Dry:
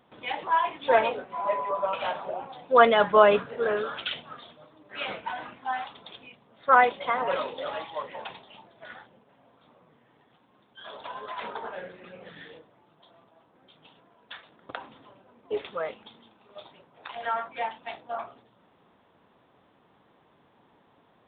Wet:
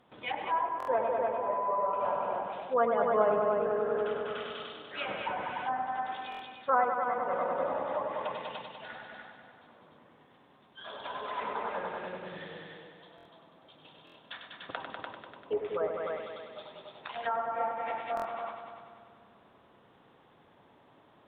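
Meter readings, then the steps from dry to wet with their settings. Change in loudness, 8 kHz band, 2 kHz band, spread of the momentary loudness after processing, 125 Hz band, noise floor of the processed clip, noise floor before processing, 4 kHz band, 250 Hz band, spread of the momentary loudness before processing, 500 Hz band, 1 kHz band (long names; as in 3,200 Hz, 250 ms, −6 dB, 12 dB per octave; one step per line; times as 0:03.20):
−6.0 dB, can't be measured, −8.5 dB, 18 LU, −2.5 dB, −61 dBFS, −63 dBFS, −7.5 dB, −4.0 dB, 26 LU, −4.0 dB, −4.5 dB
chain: on a send: echo machine with several playback heads 98 ms, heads all three, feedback 48%, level −6.5 dB
on the sum: speech leveller within 4 dB 0.5 s
treble cut that deepens with the level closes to 1,100 Hz, closed at −22.5 dBFS
buffer that repeats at 0:00.78/0:06.30/0:13.16/0:14.05/0:18.15, samples 1,024, times 3
level −5.5 dB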